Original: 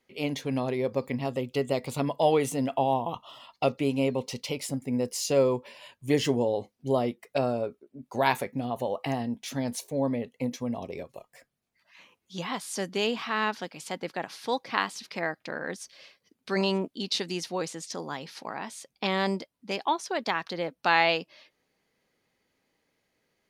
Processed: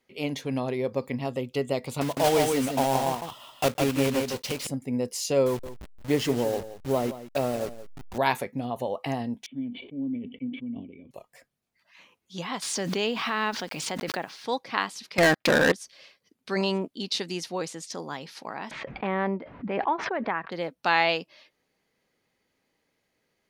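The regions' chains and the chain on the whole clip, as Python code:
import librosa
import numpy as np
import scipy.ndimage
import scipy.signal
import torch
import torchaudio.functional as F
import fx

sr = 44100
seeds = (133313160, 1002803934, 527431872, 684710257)

y = fx.chain(x, sr, fx.block_float(bits=3),
    fx.echo_single(ms=157, db=-4.0), at=(2.01, 4.67))
y = fx.chain(y, sr, fx.delta_hold(step_db=-33.5),
    fx.echo_single(ms=173, db=-14.0), at=(5.46, 8.18))
y = fx.chain(y, sr, fx.block_float(bits=7),
    fx.formant_cascade(vowel='i'),
    fx.sustainer(db_per_s=70.0), at=(9.46, 11.11))
y = fx.chain(y, sr, fx.lowpass(hz=6300.0, slope=12),
    fx.quant_dither(seeds[0], bits=10, dither='none'),
    fx.pre_swell(db_per_s=28.0), at=(12.62, 14.45))
y = fx.chain(y, sr, fx.transient(attack_db=7, sustain_db=2),
    fx.leveller(passes=5), at=(15.18, 15.72))
y = fx.chain(y, sr, fx.lowpass(hz=2100.0, slope=24),
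    fx.pre_swell(db_per_s=37.0), at=(18.71, 20.52))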